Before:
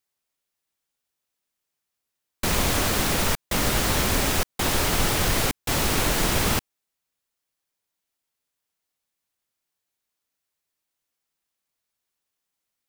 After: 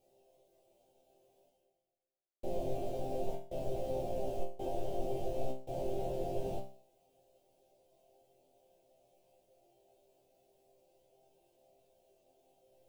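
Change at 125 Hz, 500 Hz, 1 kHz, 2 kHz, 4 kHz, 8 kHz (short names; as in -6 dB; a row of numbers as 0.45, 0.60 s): -17.5, -6.5, -15.0, -36.0, -32.0, -34.0 dB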